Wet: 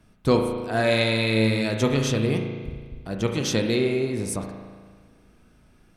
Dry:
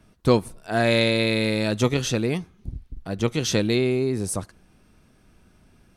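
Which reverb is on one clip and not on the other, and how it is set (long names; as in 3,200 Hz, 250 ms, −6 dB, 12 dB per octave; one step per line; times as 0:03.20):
spring reverb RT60 1.6 s, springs 36 ms, chirp 60 ms, DRR 3 dB
level −2 dB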